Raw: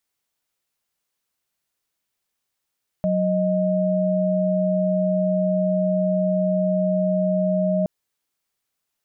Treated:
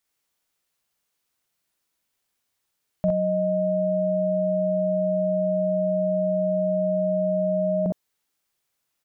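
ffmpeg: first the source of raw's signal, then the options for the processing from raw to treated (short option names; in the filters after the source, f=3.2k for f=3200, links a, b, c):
-f lavfi -i "aevalsrc='0.0944*(sin(2*PI*185*t)+sin(2*PI*622.25*t))':d=4.82:s=44100"
-af "aecho=1:1:45|62:0.447|0.668"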